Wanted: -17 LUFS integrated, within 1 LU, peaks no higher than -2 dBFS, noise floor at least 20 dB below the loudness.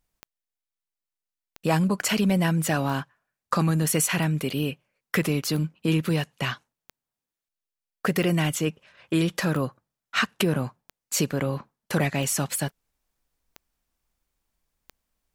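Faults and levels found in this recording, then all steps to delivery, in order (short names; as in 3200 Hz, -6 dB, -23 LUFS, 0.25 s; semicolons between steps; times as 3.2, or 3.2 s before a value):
clicks 12; loudness -26.0 LUFS; peak -8.0 dBFS; loudness target -17.0 LUFS
-> de-click; gain +9 dB; limiter -2 dBFS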